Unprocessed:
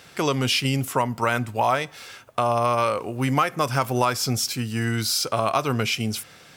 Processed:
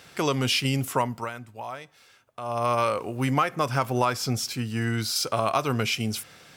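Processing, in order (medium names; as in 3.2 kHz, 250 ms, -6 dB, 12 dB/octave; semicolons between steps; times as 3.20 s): 1.02–2.71 s: dip -13 dB, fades 0.31 s linear; 3.30–5.16 s: treble shelf 5.1 kHz -5.5 dB; trim -2 dB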